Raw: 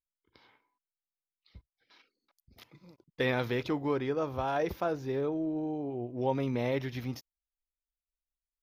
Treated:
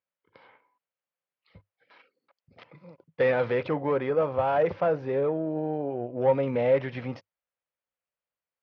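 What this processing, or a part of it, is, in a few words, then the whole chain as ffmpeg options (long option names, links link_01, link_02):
overdrive pedal into a guitar cabinet: -filter_complex "[0:a]asplit=2[link_01][link_02];[link_02]highpass=frequency=720:poles=1,volume=17dB,asoftclip=type=tanh:threshold=-15.5dB[link_03];[link_01][link_03]amix=inputs=2:normalize=0,lowpass=frequency=1600:poles=1,volume=-6dB,highpass=78,equalizer=frequency=100:width_type=q:width=4:gain=9,equalizer=frequency=160:width_type=q:width=4:gain=9,equalizer=frequency=340:width_type=q:width=4:gain=-4,equalizer=frequency=530:width_type=q:width=4:gain=9,equalizer=frequency=3700:width_type=q:width=4:gain=-7,lowpass=frequency=4200:width=0.5412,lowpass=frequency=4200:width=1.3066,volume=-1dB"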